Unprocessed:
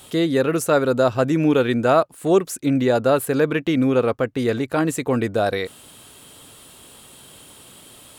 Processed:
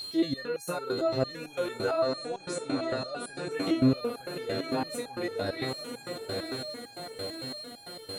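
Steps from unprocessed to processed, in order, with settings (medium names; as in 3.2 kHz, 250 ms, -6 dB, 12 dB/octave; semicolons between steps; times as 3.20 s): echo that smears into a reverb 950 ms, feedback 57%, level -8 dB; whistle 4.2 kHz -25 dBFS; 2.02–3.51 s: brick-wall FIR low-pass 10 kHz; loudness maximiser +12.5 dB; resonator arpeggio 8.9 Hz 96–820 Hz; trim -8.5 dB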